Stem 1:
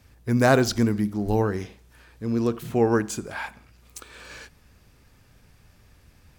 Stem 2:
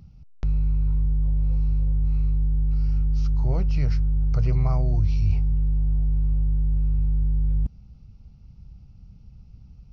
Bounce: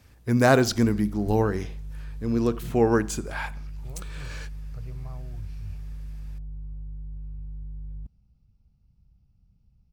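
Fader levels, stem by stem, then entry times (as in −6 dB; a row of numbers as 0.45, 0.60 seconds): 0.0, −15.5 decibels; 0.00, 0.40 seconds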